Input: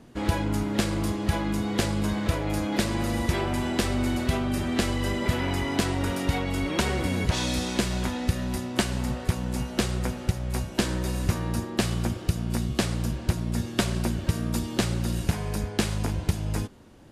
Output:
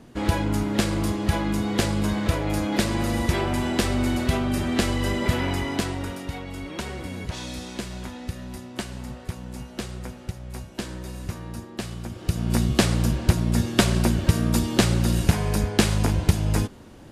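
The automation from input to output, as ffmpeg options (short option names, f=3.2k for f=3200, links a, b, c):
-af "volume=15.5dB,afade=t=out:st=5.38:d=0.87:silence=0.334965,afade=t=in:st=12.1:d=0.48:silence=0.223872"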